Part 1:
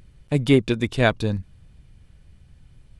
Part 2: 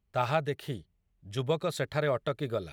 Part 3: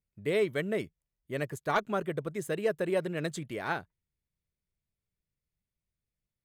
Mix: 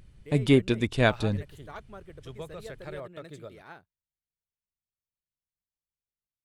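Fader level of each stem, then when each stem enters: -3.5 dB, -12.0 dB, -15.0 dB; 0.00 s, 0.90 s, 0.00 s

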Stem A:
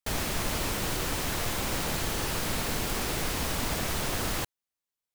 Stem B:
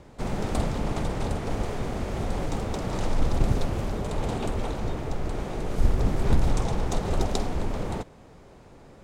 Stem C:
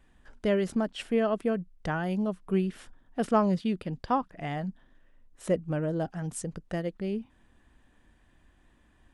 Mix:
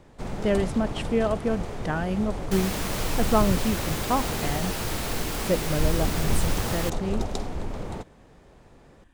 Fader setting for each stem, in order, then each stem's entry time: -0.5 dB, -3.5 dB, +2.0 dB; 2.45 s, 0.00 s, 0.00 s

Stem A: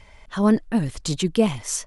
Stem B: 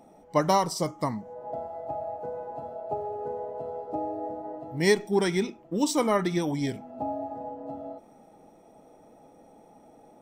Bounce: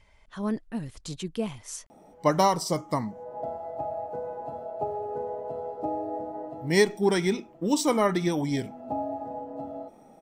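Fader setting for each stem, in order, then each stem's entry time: -11.5 dB, +1.0 dB; 0.00 s, 1.90 s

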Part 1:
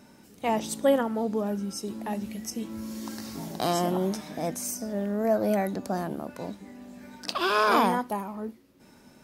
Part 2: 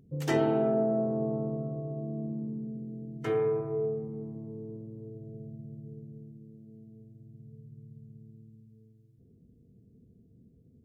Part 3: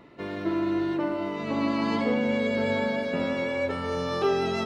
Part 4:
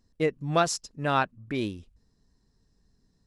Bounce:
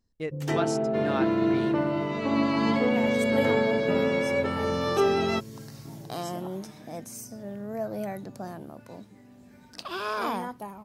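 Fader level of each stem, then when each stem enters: -8.0 dB, -0.5 dB, +1.5 dB, -7.5 dB; 2.50 s, 0.20 s, 0.75 s, 0.00 s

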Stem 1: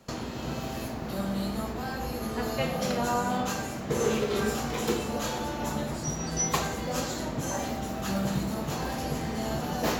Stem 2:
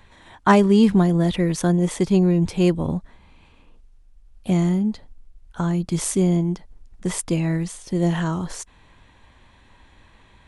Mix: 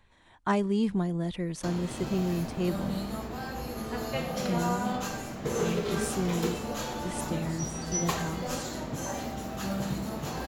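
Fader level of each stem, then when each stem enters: -3.0 dB, -12.0 dB; 1.55 s, 0.00 s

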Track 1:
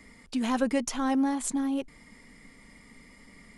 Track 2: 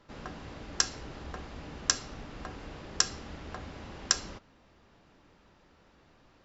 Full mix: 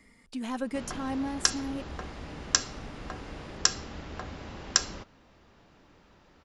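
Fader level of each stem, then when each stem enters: -6.5 dB, +2.5 dB; 0.00 s, 0.65 s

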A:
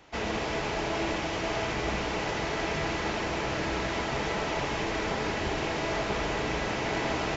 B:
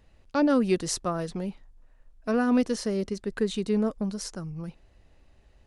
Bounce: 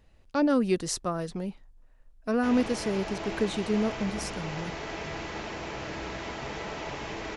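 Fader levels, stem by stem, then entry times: -6.0 dB, -1.5 dB; 2.30 s, 0.00 s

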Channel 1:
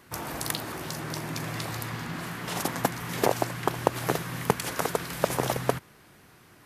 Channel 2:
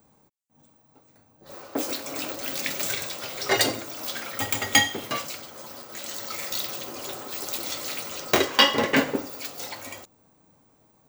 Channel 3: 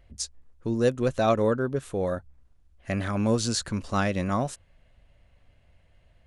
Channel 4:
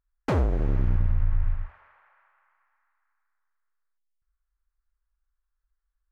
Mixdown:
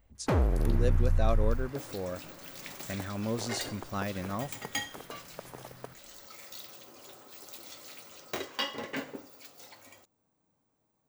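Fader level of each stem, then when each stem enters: -19.0 dB, -15.5 dB, -9.0 dB, -2.5 dB; 0.15 s, 0.00 s, 0.00 s, 0.00 s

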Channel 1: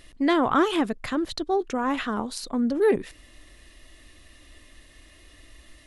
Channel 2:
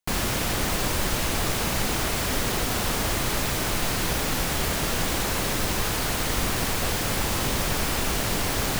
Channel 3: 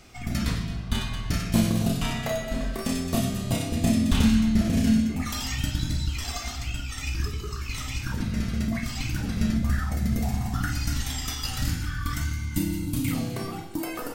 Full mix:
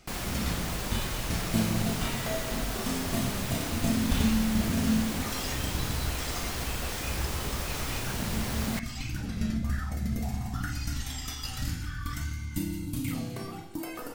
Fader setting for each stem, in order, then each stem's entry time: mute, -9.0 dB, -5.5 dB; mute, 0.00 s, 0.00 s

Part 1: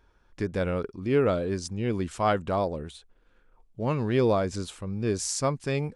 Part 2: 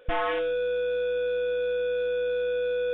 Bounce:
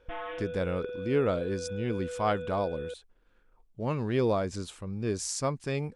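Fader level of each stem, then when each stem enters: -3.5 dB, -11.0 dB; 0.00 s, 0.00 s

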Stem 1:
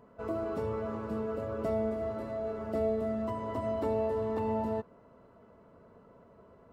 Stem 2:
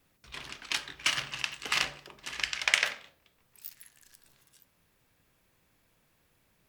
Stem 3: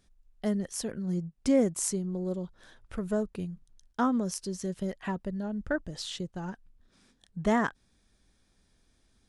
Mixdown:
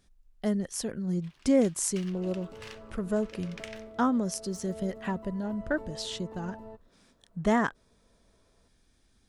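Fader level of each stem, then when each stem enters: -13.0 dB, -19.5 dB, +1.0 dB; 1.95 s, 0.90 s, 0.00 s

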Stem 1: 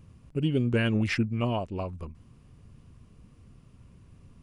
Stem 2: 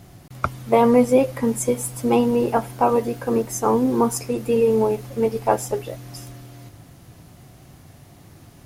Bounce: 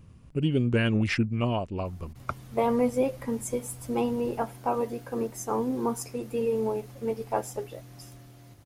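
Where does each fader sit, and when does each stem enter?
+1.0 dB, -9.5 dB; 0.00 s, 1.85 s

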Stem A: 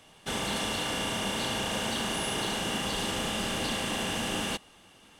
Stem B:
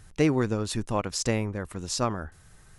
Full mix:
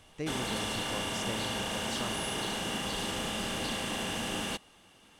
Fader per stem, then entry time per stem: -3.0 dB, -14.0 dB; 0.00 s, 0.00 s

